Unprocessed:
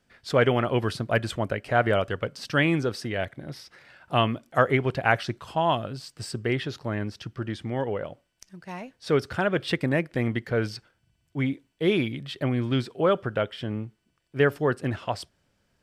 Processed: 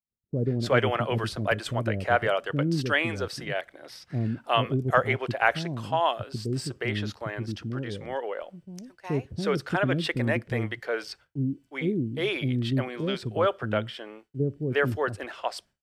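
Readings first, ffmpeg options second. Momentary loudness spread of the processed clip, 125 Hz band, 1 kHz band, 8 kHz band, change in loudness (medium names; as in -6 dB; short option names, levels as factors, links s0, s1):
10 LU, 0.0 dB, -0.5 dB, 0.0 dB, -1.5 dB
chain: -filter_complex "[0:a]acrossover=split=380[s0][s1];[s1]adelay=360[s2];[s0][s2]amix=inputs=2:normalize=0,agate=range=0.0224:threshold=0.00447:ratio=3:detection=peak"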